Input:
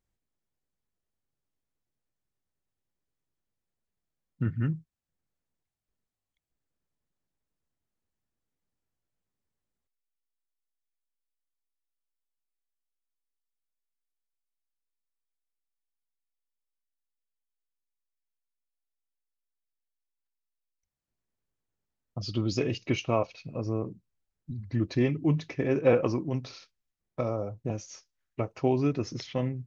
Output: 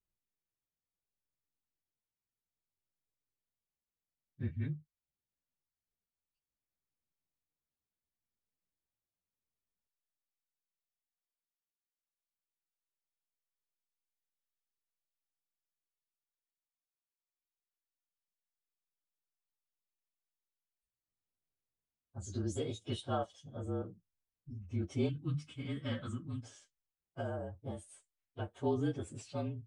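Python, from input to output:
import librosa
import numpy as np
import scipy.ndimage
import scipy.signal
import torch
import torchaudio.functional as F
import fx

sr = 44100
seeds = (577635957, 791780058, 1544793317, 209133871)

y = fx.partial_stretch(x, sr, pct=112)
y = fx.band_shelf(y, sr, hz=550.0, db=-14.5, octaves=1.7, at=(25.09, 26.43))
y = y * librosa.db_to_amplitude(-6.5)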